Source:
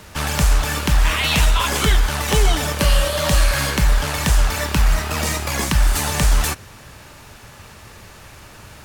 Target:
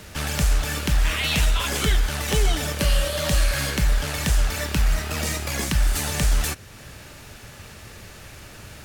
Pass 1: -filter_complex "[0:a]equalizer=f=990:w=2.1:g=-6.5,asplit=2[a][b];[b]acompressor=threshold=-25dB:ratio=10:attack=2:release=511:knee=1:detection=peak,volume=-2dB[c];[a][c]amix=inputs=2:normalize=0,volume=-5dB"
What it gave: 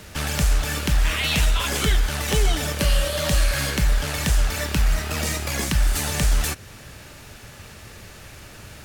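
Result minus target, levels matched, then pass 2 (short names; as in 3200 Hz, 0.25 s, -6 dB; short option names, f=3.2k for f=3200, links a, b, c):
compressor: peak gain reduction -6 dB
-filter_complex "[0:a]equalizer=f=990:w=2.1:g=-6.5,asplit=2[a][b];[b]acompressor=threshold=-31.5dB:ratio=10:attack=2:release=511:knee=1:detection=peak,volume=-2dB[c];[a][c]amix=inputs=2:normalize=0,volume=-5dB"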